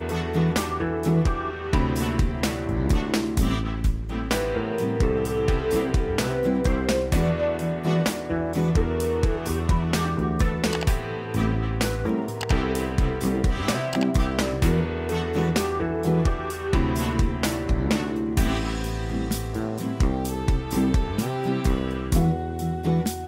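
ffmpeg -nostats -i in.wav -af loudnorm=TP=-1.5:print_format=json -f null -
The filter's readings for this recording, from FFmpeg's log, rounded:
"input_i" : "-24.8",
"input_tp" : "-8.3",
"input_lra" : "1.7",
"input_thresh" : "-34.8",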